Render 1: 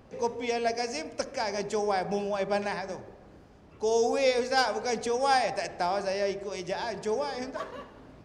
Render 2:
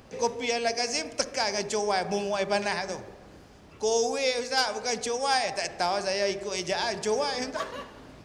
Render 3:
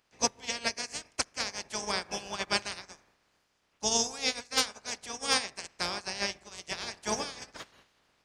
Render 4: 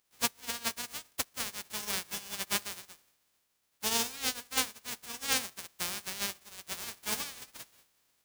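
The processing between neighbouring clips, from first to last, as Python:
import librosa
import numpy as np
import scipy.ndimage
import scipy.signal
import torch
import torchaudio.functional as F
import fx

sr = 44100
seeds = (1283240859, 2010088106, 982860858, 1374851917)

y1 = fx.high_shelf(x, sr, hz=2100.0, db=9.5)
y1 = fx.rider(y1, sr, range_db=3, speed_s=0.5)
y1 = y1 * 10.0 ** (-1.0 / 20.0)
y2 = fx.spec_clip(y1, sr, under_db=21)
y2 = fx.upward_expand(y2, sr, threshold_db=-37.0, expansion=2.5)
y3 = fx.envelope_flatten(y2, sr, power=0.1)
y3 = y3 * 10.0 ** (-2.5 / 20.0)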